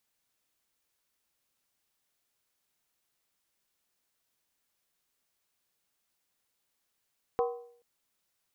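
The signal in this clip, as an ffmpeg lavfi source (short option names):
-f lavfi -i "aevalsrc='0.0668*pow(10,-3*t/0.6)*sin(2*PI*477*t)+0.0376*pow(10,-3*t/0.475)*sin(2*PI*760.3*t)+0.0211*pow(10,-3*t/0.411)*sin(2*PI*1018.9*t)+0.0119*pow(10,-3*t/0.396)*sin(2*PI*1095.2*t)+0.00668*pow(10,-3*t/0.368)*sin(2*PI*1265.5*t)':d=0.43:s=44100"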